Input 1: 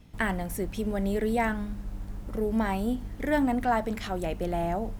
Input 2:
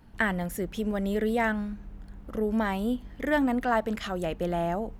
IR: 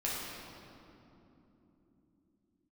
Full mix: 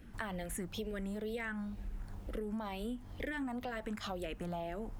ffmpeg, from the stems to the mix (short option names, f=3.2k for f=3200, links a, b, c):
-filter_complex "[0:a]volume=-7.5dB[a];[1:a]alimiter=limit=-20dB:level=0:latency=1,asplit=2[b][c];[c]afreqshift=-2.1[d];[b][d]amix=inputs=2:normalize=1,volume=-1,volume=2.5dB[e];[a][e]amix=inputs=2:normalize=0,acompressor=threshold=-37dB:ratio=6"